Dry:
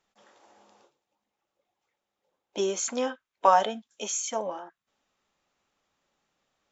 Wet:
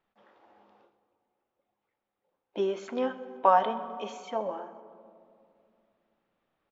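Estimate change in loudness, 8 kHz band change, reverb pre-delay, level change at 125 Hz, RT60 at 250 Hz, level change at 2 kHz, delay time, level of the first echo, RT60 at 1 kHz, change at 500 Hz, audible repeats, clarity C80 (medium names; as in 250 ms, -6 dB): -2.0 dB, no reading, 3 ms, no reading, 3.3 s, -3.0 dB, 127 ms, -20.5 dB, 2.2 s, -0.5 dB, 3, 13.0 dB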